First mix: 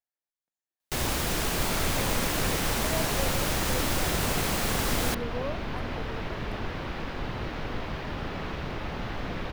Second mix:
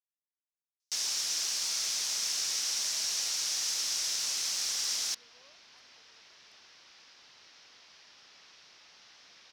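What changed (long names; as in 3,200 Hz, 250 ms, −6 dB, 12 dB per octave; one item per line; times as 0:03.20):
first sound +9.0 dB
master: add resonant band-pass 5,600 Hz, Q 3.7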